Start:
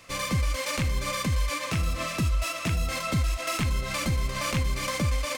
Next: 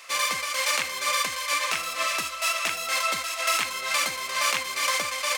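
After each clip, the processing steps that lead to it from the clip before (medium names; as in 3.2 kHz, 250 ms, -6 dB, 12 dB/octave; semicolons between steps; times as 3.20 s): high-pass 850 Hz 12 dB/octave; trim +7 dB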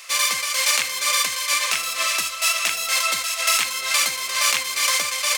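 treble shelf 2.2 kHz +10.5 dB; trim -1.5 dB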